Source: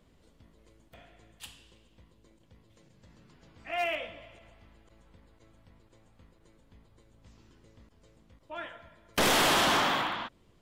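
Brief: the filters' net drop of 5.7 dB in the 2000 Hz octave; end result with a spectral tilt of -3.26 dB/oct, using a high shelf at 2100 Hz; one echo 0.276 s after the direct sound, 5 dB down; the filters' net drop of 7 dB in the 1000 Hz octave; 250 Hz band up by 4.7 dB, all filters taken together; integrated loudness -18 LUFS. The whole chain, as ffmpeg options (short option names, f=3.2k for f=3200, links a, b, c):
-af "equalizer=f=250:t=o:g=6.5,equalizer=f=1k:t=o:g=-9,equalizer=f=2k:t=o:g=-6.5,highshelf=f=2.1k:g=3,aecho=1:1:276:0.562,volume=10dB"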